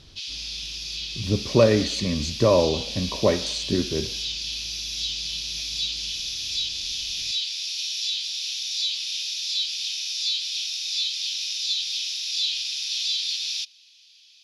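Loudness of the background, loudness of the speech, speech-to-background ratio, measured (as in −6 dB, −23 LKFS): −26.5 LKFS, −23.5 LKFS, 3.0 dB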